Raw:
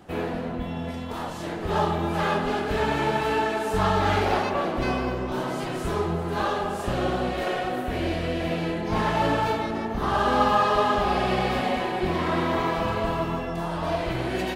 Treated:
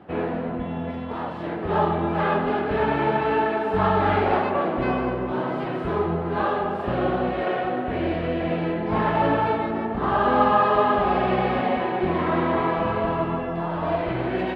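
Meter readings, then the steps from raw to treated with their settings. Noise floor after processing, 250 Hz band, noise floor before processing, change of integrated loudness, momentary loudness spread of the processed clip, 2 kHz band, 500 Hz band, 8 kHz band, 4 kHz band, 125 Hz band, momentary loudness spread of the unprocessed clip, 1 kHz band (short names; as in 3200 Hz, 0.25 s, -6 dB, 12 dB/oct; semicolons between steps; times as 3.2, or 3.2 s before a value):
-30 dBFS, +2.5 dB, -32 dBFS, +2.0 dB, 8 LU, +0.5 dB, +3.0 dB, under -20 dB, -5.5 dB, +0.5 dB, 8 LU, +2.5 dB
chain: HPF 140 Hz 6 dB/oct; air absorption 450 m; gain +4.5 dB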